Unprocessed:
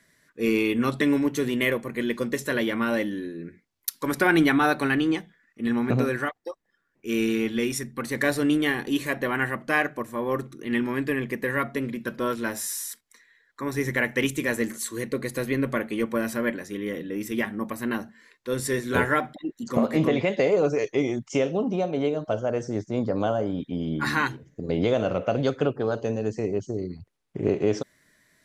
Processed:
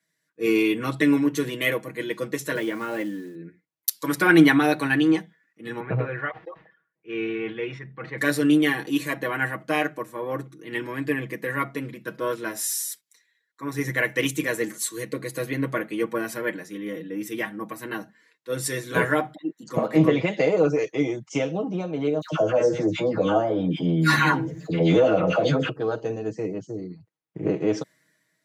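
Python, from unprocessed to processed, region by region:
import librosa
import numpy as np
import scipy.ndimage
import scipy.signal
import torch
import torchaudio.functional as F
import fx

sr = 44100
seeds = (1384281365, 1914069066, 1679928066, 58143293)

y = fx.chain(x, sr, fx.highpass(hz=110.0, slope=24),
    fx.air_absorb(metres=260.0),
    fx.quant_companded(bits=6), at=(2.55, 3.35))
y = fx.chain(y, sr, fx.lowpass(hz=2800.0, slope=24),
    fx.peak_eq(hz=270.0, db=-10.0, octaves=0.51),
    fx.sustainer(db_per_s=100.0), at=(5.8, 8.18))
y = fx.chain(y, sr, fx.doubler(ms=12.0, db=-4.5),
    fx.dispersion(late='lows', ms=110.0, hz=1300.0),
    fx.env_flatten(amount_pct=50), at=(22.21, 25.69))
y = scipy.signal.sosfilt(scipy.signal.butter(2, 110.0, 'highpass', fs=sr, output='sos'), y)
y = y + 0.76 * np.pad(y, (int(6.3 * sr / 1000.0), 0))[:len(y)]
y = fx.band_widen(y, sr, depth_pct=40)
y = F.gain(torch.from_numpy(y), -1.0).numpy()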